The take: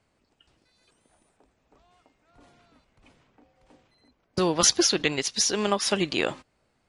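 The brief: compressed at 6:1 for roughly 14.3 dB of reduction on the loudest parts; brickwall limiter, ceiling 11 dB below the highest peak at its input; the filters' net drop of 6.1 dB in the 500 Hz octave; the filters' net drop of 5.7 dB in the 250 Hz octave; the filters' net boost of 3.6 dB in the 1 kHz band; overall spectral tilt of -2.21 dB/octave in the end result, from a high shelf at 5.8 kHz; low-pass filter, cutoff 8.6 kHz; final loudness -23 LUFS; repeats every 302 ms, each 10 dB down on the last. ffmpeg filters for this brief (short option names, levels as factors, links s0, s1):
-af "lowpass=8600,equalizer=f=250:t=o:g=-6,equalizer=f=500:t=o:g=-7.5,equalizer=f=1000:t=o:g=7,highshelf=f=5800:g=-9,acompressor=threshold=0.0178:ratio=6,alimiter=level_in=2.11:limit=0.0631:level=0:latency=1,volume=0.473,aecho=1:1:302|604|906|1208:0.316|0.101|0.0324|0.0104,volume=8.41"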